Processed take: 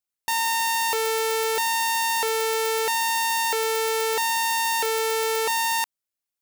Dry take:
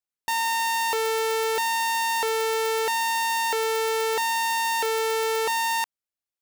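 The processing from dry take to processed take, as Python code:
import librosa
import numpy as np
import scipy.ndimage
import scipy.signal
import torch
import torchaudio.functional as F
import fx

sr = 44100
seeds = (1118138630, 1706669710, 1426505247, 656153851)

y = fx.rattle_buzz(x, sr, strikes_db=-45.0, level_db=-34.0)
y = fx.high_shelf(y, sr, hz=5100.0, db=5.5)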